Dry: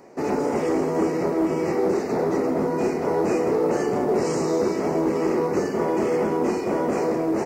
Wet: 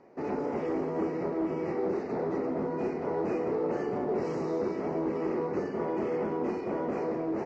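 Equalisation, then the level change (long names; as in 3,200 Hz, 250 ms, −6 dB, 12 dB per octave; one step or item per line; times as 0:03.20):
high-frequency loss of the air 200 metres
−8.0 dB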